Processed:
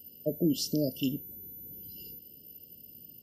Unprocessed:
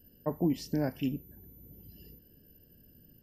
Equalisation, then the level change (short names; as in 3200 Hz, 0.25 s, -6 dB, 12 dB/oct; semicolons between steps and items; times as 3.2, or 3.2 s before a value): HPF 160 Hz 6 dB/oct; brick-wall FIR band-stop 660–2700 Hz; high shelf 2100 Hz +10 dB; +2.5 dB